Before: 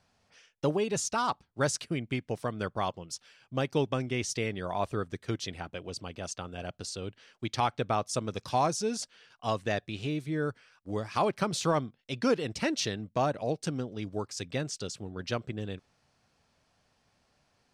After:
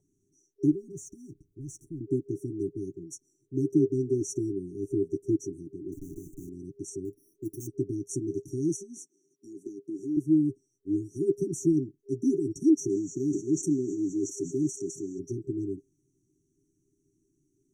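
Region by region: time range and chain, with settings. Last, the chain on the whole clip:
0.71–2.01 s: amplifier tone stack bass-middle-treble 10-0-1 + waveshaping leveller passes 2 + level flattener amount 50%
5.92–6.49 s: Schmitt trigger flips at -52.5 dBFS + careless resampling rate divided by 8×, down filtered, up hold
7.05–7.67 s: careless resampling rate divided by 6×, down none, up hold + transformer saturation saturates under 1.5 kHz
8.76–10.17 s: high-pass 180 Hz 24 dB/octave + compression 3:1, threshold -38 dBFS
12.88–15.18 s: high-pass 160 Hz + band noise 4.6–7.5 kHz -58 dBFS + decay stretcher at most 44 dB/s
whole clip: FFT band-reject 400–5600 Hz; high-order bell 510 Hz +15.5 dB; comb 6.9 ms, depth 61%; trim -2.5 dB

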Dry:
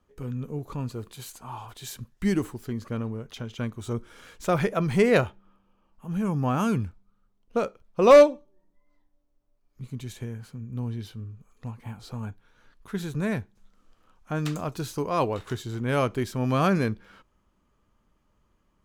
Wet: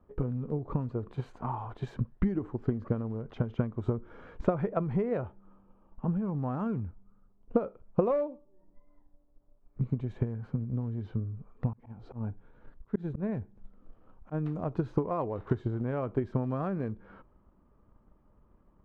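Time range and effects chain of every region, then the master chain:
11.73–14.73 s: peaking EQ 1.2 kHz -4.5 dB 1.2 oct + slow attack 255 ms
whole clip: low-pass 1 kHz 12 dB/octave; compression 4:1, threshold -36 dBFS; transient shaper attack +8 dB, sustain +3 dB; trim +4 dB

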